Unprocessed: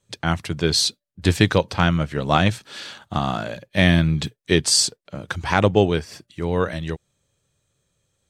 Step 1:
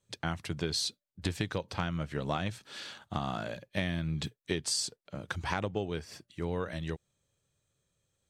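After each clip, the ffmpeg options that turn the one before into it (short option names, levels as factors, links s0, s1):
-af "acompressor=threshold=0.1:ratio=10,volume=0.398"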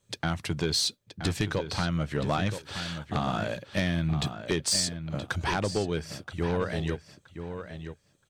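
-filter_complex "[0:a]aeval=exprs='0.211*sin(PI/2*2.24*val(0)/0.211)':c=same,asplit=2[s0][s1];[s1]adelay=974,lowpass=f=3900:p=1,volume=0.355,asplit=2[s2][s3];[s3]adelay=974,lowpass=f=3900:p=1,volume=0.18,asplit=2[s4][s5];[s5]adelay=974,lowpass=f=3900:p=1,volume=0.18[s6];[s0][s2][s4][s6]amix=inputs=4:normalize=0,volume=0.596"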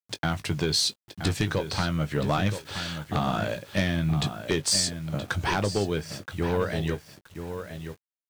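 -filter_complex "[0:a]acrusher=bits=8:mix=0:aa=0.000001,asplit=2[s0][s1];[s1]adelay=20,volume=0.251[s2];[s0][s2]amix=inputs=2:normalize=0,volume=1.26"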